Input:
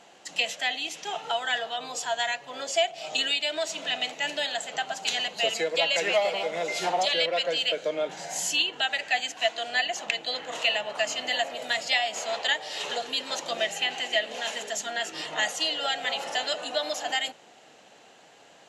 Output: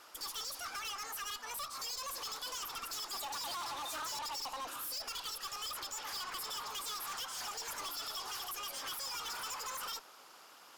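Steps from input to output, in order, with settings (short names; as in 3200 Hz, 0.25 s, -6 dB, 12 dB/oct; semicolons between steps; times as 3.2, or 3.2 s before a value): harmonic-percussive split harmonic -5 dB; tube stage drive 39 dB, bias 0.3; speed mistake 45 rpm record played at 78 rpm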